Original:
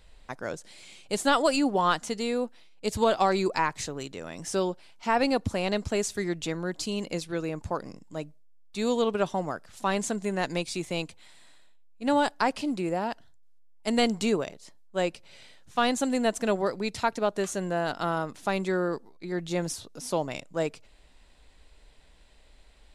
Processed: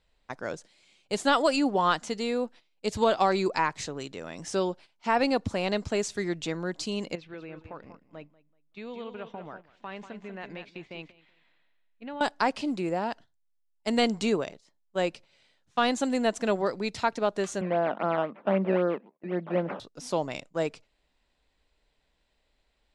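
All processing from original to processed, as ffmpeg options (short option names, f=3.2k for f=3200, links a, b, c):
-filter_complex "[0:a]asettb=1/sr,asplit=3[a][b][c];[a]atrim=end=7.154[d];[b]atrim=start=7.15:end=12.21,asetpts=PTS-STARTPTS,afade=t=in:d=0.004:c=qsin,afade=t=out:st=5.056:d=0.004:c=qsin,acompressor=threshold=-43dB:ratio=2.5:attack=3.2:release=140:knee=1:detection=peak,lowpass=f=2.6k:t=q:w=1.7,aecho=1:1:190|380|570:0.355|0.0993|0.0278,atrim=end_sample=223146[e];[c]atrim=start=12.206[f];[d][e]acrossfade=d=0.004:c1=hsin:c2=qsin[g];[g][f]acrossfade=d=0.004:c1=qsin:c2=hsin,asettb=1/sr,asplit=3[h][i][j];[h]atrim=end=17.614[k];[i]atrim=start=17.61:end=19.8,asetpts=PTS-STARTPTS,afade=t=in:d=0.004:c=qsin,afade=t=out:st=2.186:d=0.004:c=qsin,acrusher=samples=14:mix=1:aa=0.000001:lfo=1:lforange=14:lforate=3.8,highpass=f=180:w=0.5412,highpass=f=180:w=1.3066,equalizer=f=200:t=q:w=4:g=8,equalizer=f=590:t=q:w=4:g=8,equalizer=f=1.7k:t=q:w=4:g=-4,lowpass=f=2.4k:w=0.5412,lowpass=f=2.4k:w=1.3066[l];[j]atrim=start=19.796[m];[k][l]acrossfade=d=0.004:c1=hsin:c2=qsin[n];[n][m]acrossfade=d=0.004:c1=qsin:c2=hsin,agate=range=-12dB:threshold=-44dB:ratio=16:detection=peak,lowpass=6.9k,lowshelf=f=73:g=-7.5"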